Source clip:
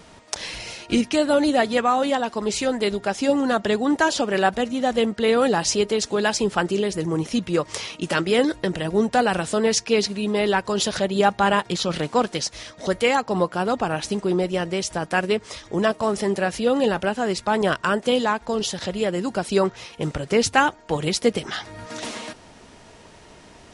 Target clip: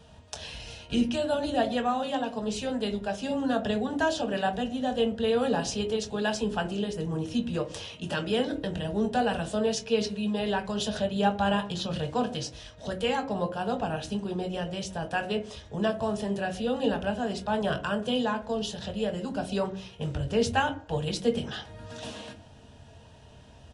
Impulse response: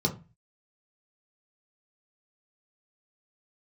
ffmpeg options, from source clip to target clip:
-filter_complex "[0:a]highshelf=frequency=5100:gain=-4.5,asplit=2[link_01][link_02];[link_02]adelay=22,volume=-11dB[link_03];[link_01][link_03]amix=inputs=2:normalize=0,asplit=2[link_04][link_05];[1:a]atrim=start_sample=2205,asetrate=23814,aresample=44100[link_06];[link_05][link_06]afir=irnorm=-1:irlink=0,volume=-15dB[link_07];[link_04][link_07]amix=inputs=2:normalize=0,volume=-8dB"

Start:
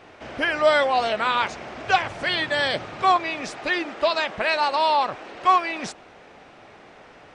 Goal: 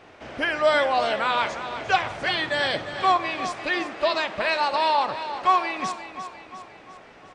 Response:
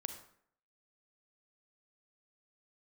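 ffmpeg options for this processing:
-filter_complex "[0:a]aecho=1:1:351|702|1053|1404|1755:0.282|0.144|0.0733|0.0374|0.0191,asplit=2[link_01][link_02];[1:a]atrim=start_sample=2205[link_03];[link_02][link_03]afir=irnorm=-1:irlink=0,volume=-1.5dB[link_04];[link_01][link_04]amix=inputs=2:normalize=0,volume=-6dB"

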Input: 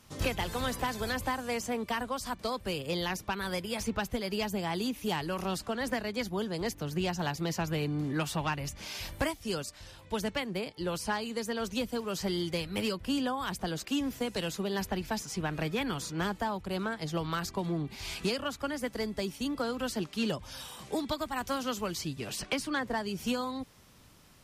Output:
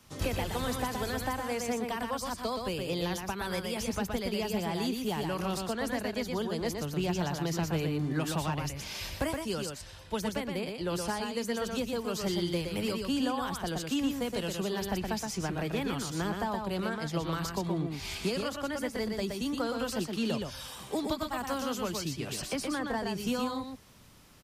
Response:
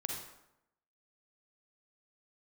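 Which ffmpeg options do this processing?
-filter_complex "[0:a]acrossover=split=120|840|7200[link_01][link_02][link_03][link_04];[link_03]alimiter=level_in=6dB:limit=-24dB:level=0:latency=1,volume=-6dB[link_05];[link_01][link_02][link_05][link_04]amix=inputs=4:normalize=0,aecho=1:1:120:0.596"

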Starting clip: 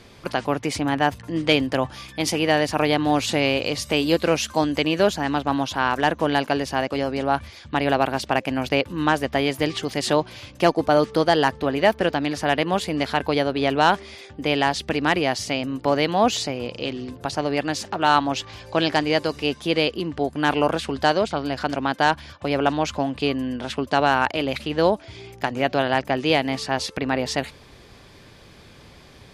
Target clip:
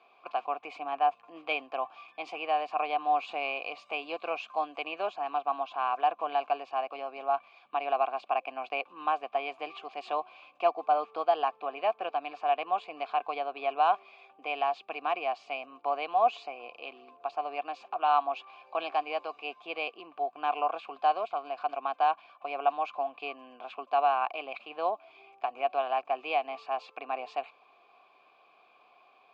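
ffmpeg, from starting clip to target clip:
ffmpeg -i in.wav -filter_complex "[0:a]asplit=3[link_01][link_02][link_03];[link_01]bandpass=frequency=730:width_type=q:width=8,volume=0dB[link_04];[link_02]bandpass=frequency=1090:width_type=q:width=8,volume=-6dB[link_05];[link_03]bandpass=frequency=2440:width_type=q:width=8,volume=-9dB[link_06];[link_04][link_05][link_06]amix=inputs=3:normalize=0,highpass=330,equalizer=frequency=570:width_type=q:width=4:gain=-6,equalizer=frequency=1000:width_type=q:width=4:gain=6,equalizer=frequency=2300:width_type=q:width=4:gain=4,equalizer=frequency=5700:width_type=q:width=4:gain=-9,lowpass=frequency=6900:width=0.5412,lowpass=frequency=6900:width=1.3066" out.wav

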